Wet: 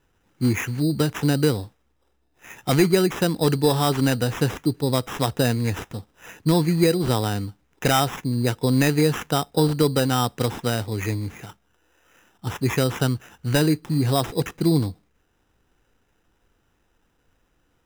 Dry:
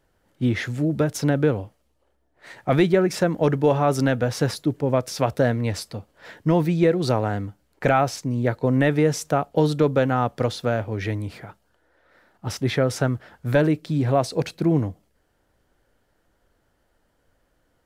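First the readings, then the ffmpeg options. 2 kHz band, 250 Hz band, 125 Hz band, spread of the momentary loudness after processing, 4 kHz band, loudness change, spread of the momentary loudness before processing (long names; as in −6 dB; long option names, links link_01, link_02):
0.0 dB, +0.5 dB, +1.0 dB, 10 LU, +6.5 dB, 0.0 dB, 10 LU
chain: -af "acrusher=samples=10:mix=1:aa=0.000001,equalizer=frequency=600:width=3.9:gain=-9,volume=1dB"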